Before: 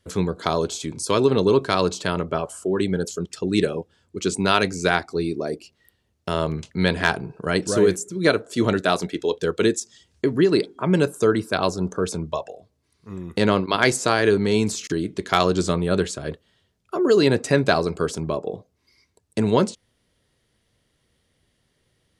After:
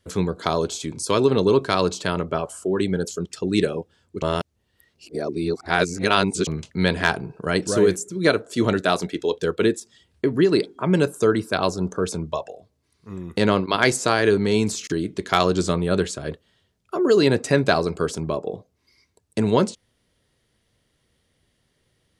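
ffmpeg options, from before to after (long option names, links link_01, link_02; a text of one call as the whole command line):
ffmpeg -i in.wav -filter_complex "[0:a]asettb=1/sr,asplit=3[link_01][link_02][link_03];[link_01]atrim=end=9.554[link_04];[link_02]atrim=start=9.55:end=10.34,asetpts=PTS-STARTPTS,afade=type=in:duration=0.004:curve=qsin,afade=type=out:start_time=0.786:duration=0.004:curve=qsin,equalizer=frequency=6300:width=1.4:gain=-10[link_05];[link_03]atrim=start=10.336[link_06];[link_04][link_05]acrossfade=duration=0.004:curve1=hsin:curve2=qsin[link_07];[link_07][link_06]acrossfade=duration=0.004:curve1=qsin:curve2=hsin,asplit=3[link_08][link_09][link_10];[link_08]atrim=end=4.222[link_11];[link_09]atrim=start=4.218:end=6.472,asetpts=PTS-STARTPTS,areverse[link_12];[link_10]atrim=start=6.468[link_13];[link_11][link_12]acrossfade=duration=0.004:curve1=hsin:curve2=hsin[link_14];[link_14][link_13]acrossfade=duration=0.004:curve1=hsin:curve2=hsin" out.wav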